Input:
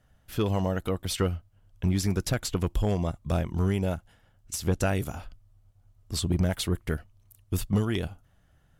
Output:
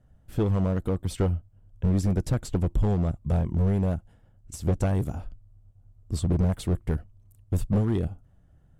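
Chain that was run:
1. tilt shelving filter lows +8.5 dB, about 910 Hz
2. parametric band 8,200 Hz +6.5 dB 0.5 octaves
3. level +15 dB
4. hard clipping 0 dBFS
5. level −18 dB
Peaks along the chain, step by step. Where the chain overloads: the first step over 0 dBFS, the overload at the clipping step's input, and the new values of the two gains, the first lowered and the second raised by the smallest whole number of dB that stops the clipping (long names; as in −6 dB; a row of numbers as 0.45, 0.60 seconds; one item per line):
−7.5, −7.5, +7.5, 0.0, −18.0 dBFS
step 3, 7.5 dB
step 3 +7 dB, step 5 −10 dB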